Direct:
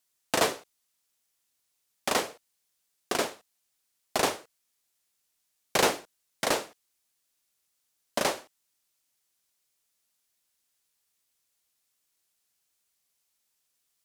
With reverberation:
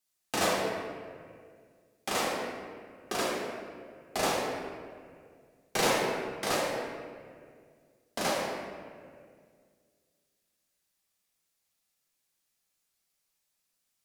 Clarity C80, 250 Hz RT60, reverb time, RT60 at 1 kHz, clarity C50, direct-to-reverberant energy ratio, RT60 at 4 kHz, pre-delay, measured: 1.0 dB, 2.4 s, 2.0 s, 1.8 s, -1.0 dB, -5.5 dB, 1.2 s, 3 ms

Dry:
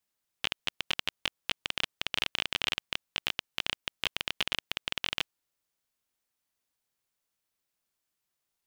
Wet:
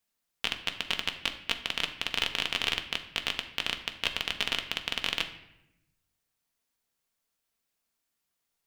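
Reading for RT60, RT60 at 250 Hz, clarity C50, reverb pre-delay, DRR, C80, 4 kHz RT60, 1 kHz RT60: 0.85 s, 1.3 s, 11.0 dB, 4 ms, 5.0 dB, 13.5 dB, 0.65 s, 0.80 s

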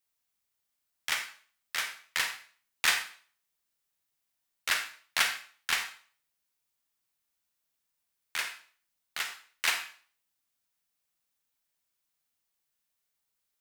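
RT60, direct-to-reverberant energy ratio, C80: 0.45 s, 6.0 dB, 12.5 dB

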